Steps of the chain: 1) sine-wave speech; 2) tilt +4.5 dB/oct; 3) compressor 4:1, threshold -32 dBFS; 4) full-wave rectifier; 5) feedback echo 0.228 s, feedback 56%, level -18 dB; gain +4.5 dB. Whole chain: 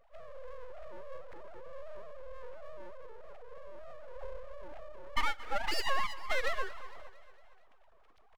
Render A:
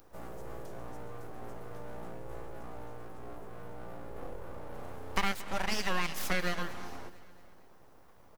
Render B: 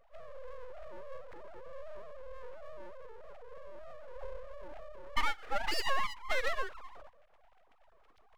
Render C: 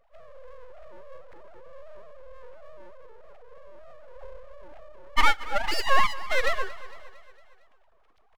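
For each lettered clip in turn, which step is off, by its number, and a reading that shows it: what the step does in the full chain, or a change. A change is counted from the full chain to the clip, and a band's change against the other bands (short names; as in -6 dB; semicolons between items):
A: 1, 250 Hz band +13.0 dB; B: 5, echo-to-direct -16.5 dB to none; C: 3, mean gain reduction 1.5 dB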